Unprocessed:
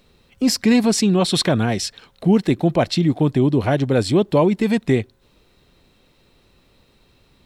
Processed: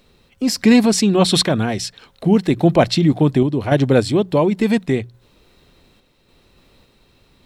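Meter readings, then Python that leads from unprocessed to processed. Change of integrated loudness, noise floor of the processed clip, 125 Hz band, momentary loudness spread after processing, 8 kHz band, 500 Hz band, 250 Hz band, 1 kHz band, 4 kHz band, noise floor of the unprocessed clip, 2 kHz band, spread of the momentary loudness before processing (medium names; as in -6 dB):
+2.0 dB, -58 dBFS, +1.5 dB, 10 LU, +1.5 dB, +2.0 dB, +2.0 dB, +2.0 dB, +2.5 dB, -58 dBFS, +2.5 dB, 6 LU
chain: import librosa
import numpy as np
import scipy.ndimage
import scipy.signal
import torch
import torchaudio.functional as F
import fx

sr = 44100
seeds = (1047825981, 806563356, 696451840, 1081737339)

y = fx.hum_notches(x, sr, base_hz=60, count=3)
y = fx.tremolo_random(y, sr, seeds[0], hz=3.5, depth_pct=55)
y = y * 10.0 ** (4.5 / 20.0)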